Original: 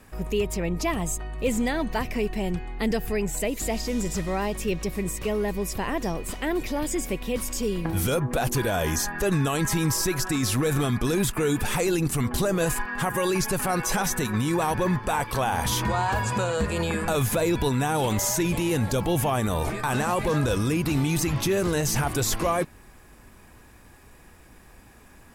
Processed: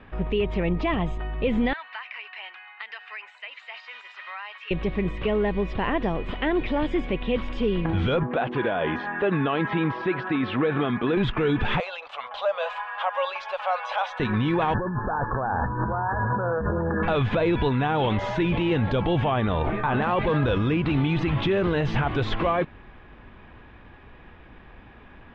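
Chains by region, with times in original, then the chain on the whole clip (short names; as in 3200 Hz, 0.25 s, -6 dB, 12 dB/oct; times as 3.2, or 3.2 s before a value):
1.73–4.71 HPF 1100 Hz 24 dB/oct + notch 3400 Hz, Q 9.5 + compressor 4:1, threshold -36 dBFS
8.23–11.17 BPF 210–3500 Hz + air absorption 110 m
11.8–14.2 elliptic high-pass 560 Hz + bell 1800 Hz -9 dB 0.69 oct
14.74–17.03 negative-ratio compressor -29 dBFS + brick-wall FIR band-stop 1800–9100 Hz
19.62–20.02 LPF 1800 Hz 6 dB/oct + doubler 19 ms -11 dB
whole clip: Chebyshev low-pass 3400 Hz, order 4; limiter -19.5 dBFS; gain +4.5 dB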